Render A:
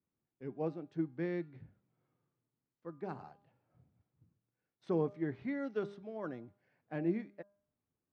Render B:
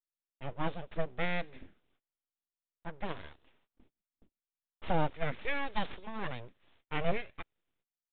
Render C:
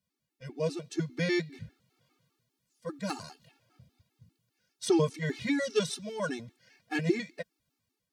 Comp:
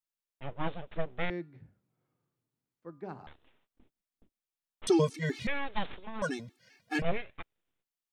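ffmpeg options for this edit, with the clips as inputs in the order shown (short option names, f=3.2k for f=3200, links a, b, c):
-filter_complex "[2:a]asplit=2[a][b];[1:a]asplit=4[c][d][e][f];[c]atrim=end=1.302[g];[0:a]atrim=start=1.298:end=3.272[h];[d]atrim=start=3.268:end=4.872[i];[a]atrim=start=4.868:end=5.472[j];[e]atrim=start=5.468:end=6.222[k];[b]atrim=start=6.218:end=7.022[l];[f]atrim=start=7.018[m];[g][h]acrossfade=d=0.004:c1=hsin:c2=hsin[n];[n][i]acrossfade=d=0.004:c1=hsin:c2=hsin[o];[o][j]acrossfade=d=0.004:c1=hsin:c2=hsin[p];[p][k]acrossfade=d=0.004:c1=hsin:c2=hsin[q];[q][l]acrossfade=d=0.004:c1=hsin:c2=hsin[r];[r][m]acrossfade=d=0.004:c1=hsin:c2=hsin"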